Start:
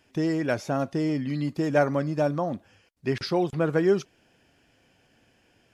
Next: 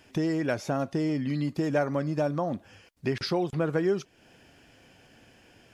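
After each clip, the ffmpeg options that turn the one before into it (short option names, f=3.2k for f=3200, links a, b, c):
-af "acompressor=threshold=-38dB:ratio=2,volume=6.5dB"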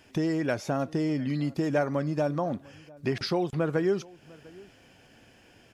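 -filter_complex "[0:a]asplit=2[a][b];[b]adelay=699.7,volume=-23dB,highshelf=f=4k:g=-15.7[c];[a][c]amix=inputs=2:normalize=0"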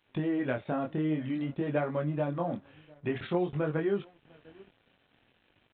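-af "flanger=delay=19.5:depth=7:speed=0.52,aresample=8000,aeval=exprs='sgn(val(0))*max(abs(val(0))-0.001,0)':c=same,aresample=44100"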